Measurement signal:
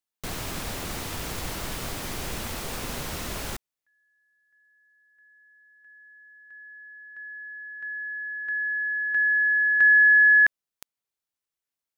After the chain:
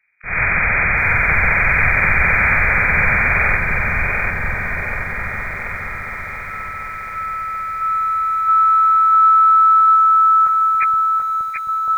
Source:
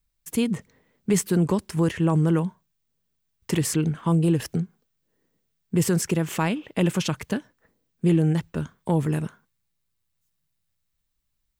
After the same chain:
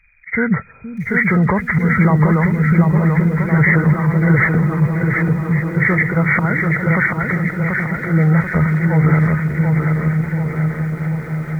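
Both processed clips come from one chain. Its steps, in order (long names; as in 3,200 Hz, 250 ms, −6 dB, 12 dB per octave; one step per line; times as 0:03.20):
hearing-aid frequency compression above 1,200 Hz 4 to 1
parametric band 300 Hz −14.5 dB 0.91 octaves
volume swells 264 ms
echo whose low-pass opens from repeat to repeat 471 ms, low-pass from 200 Hz, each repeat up 1 octave, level −6 dB
boost into a limiter +22.5 dB
feedback echo at a low word length 735 ms, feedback 55%, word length 7 bits, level −4 dB
level −6 dB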